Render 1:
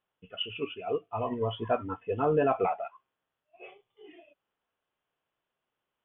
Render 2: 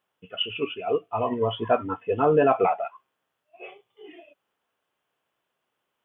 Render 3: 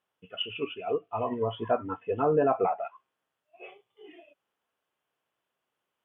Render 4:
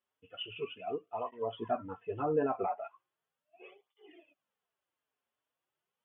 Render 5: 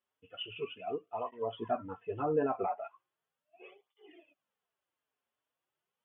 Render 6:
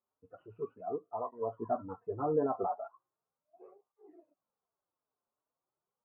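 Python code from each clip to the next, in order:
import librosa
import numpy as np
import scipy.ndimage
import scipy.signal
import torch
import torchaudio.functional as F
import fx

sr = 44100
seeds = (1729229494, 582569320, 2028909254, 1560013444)

y1 = fx.highpass(x, sr, hz=140.0, slope=6)
y1 = y1 * librosa.db_to_amplitude(6.5)
y2 = fx.env_lowpass_down(y1, sr, base_hz=1500.0, full_db=-19.0)
y2 = y2 * librosa.db_to_amplitude(-4.5)
y3 = fx.flanger_cancel(y2, sr, hz=0.38, depth_ms=6.5)
y3 = y3 * librosa.db_to_amplitude(-4.0)
y4 = y3
y5 = scipy.signal.sosfilt(scipy.signal.butter(6, 1300.0, 'lowpass', fs=sr, output='sos'), y4)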